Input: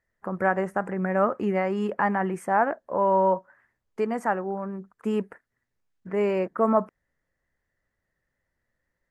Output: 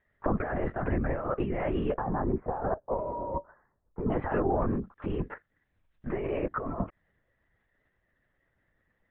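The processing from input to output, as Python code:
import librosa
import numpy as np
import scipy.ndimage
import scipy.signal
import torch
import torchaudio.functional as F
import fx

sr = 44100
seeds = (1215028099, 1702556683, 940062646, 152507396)

y = fx.lowpass(x, sr, hz=1200.0, slope=24, at=(1.97, 4.12))
y = fx.over_compress(y, sr, threshold_db=-30.0, ratio=-1.0)
y = fx.lpc_vocoder(y, sr, seeds[0], excitation='whisper', order=16)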